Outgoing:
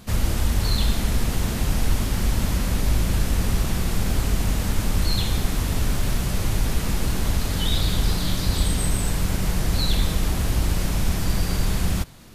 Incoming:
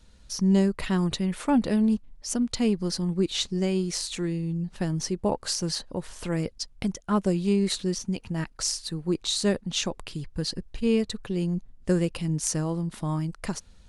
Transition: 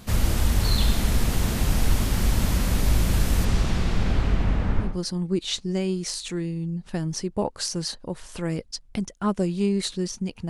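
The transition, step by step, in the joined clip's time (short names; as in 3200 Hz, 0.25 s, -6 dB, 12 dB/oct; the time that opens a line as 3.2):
outgoing
3.44–4.99 LPF 7600 Hz -> 1300 Hz
4.89 switch to incoming from 2.76 s, crossfade 0.20 s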